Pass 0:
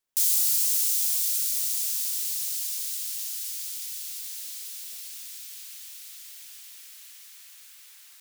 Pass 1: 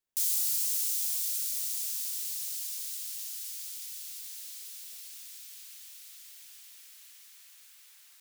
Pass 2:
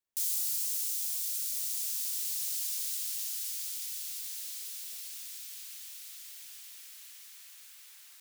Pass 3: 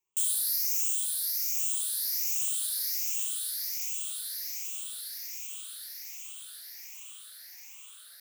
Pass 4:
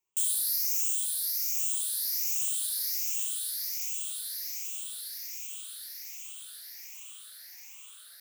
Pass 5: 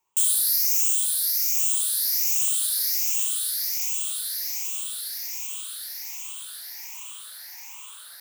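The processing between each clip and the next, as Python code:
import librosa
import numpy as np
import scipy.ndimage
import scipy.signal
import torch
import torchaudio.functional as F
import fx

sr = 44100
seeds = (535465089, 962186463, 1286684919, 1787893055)

y1 = fx.low_shelf(x, sr, hz=440.0, db=5.0)
y1 = y1 * librosa.db_to_amplitude(-6.0)
y2 = fx.rider(y1, sr, range_db=3, speed_s=0.5)
y3 = fx.spec_ripple(y2, sr, per_octave=0.71, drift_hz=1.3, depth_db=18)
y4 = fx.dynamic_eq(y3, sr, hz=1000.0, q=0.97, threshold_db=-59.0, ratio=4.0, max_db=-4)
y5 = fx.peak_eq(y4, sr, hz=930.0, db=13.0, octaves=0.66)
y5 = y5 * librosa.db_to_amplitude(7.0)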